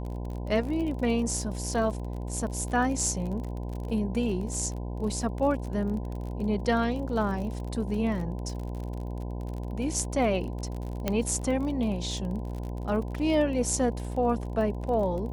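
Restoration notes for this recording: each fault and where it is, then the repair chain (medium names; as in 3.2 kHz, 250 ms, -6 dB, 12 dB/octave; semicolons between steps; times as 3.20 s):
buzz 60 Hz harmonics 17 -34 dBFS
crackle 39 per s -35 dBFS
11.08 s: pop -12 dBFS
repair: de-click; de-hum 60 Hz, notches 17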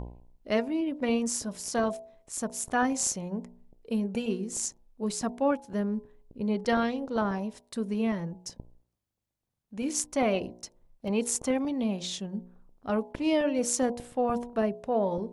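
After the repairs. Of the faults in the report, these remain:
11.08 s: pop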